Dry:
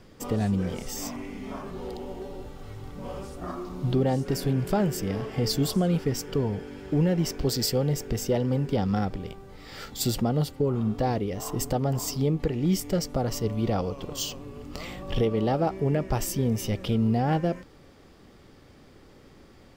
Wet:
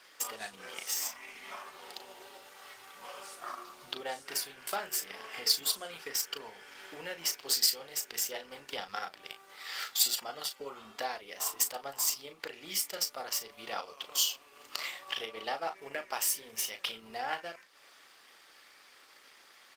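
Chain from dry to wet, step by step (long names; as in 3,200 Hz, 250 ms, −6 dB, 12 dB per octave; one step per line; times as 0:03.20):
in parallel at 0 dB: downward compressor 6 to 1, threshold −38 dBFS, peak gain reduction 17.5 dB
on the sum: high-pass filter 1,400 Hz 12 dB per octave
double-tracking delay 36 ms −6 dB
transient designer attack +5 dB, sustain −4 dB
Opus 24 kbit/s 48,000 Hz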